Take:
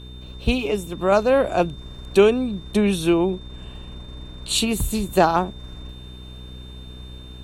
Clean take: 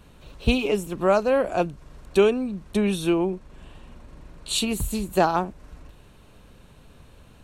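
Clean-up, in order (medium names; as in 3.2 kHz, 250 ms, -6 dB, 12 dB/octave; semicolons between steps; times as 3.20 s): de-click; de-hum 62.4 Hz, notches 7; band-stop 3.6 kHz, Q 30; gain correction -3.5 dB, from 1.12 s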